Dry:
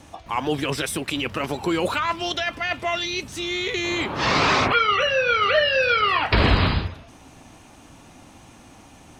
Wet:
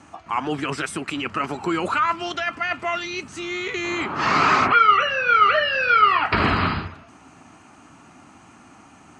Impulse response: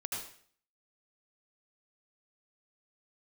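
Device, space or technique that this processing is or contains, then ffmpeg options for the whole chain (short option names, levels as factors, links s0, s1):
car door speaker: -af "highpass=110,equalizer=f=120:t=q:w=4:g=-4,equalizer=f=520:t=q:w=4:g=-8,equalizer=f=1300:t=q:w=4:g=8,equalizer=f=3600:t=q:w=4:g=-10,equalizer=f=5500:t=q:w=4:g=-6,lowpass=f=8300:w=0.5412,lowpass=f=8300:w=1.3066"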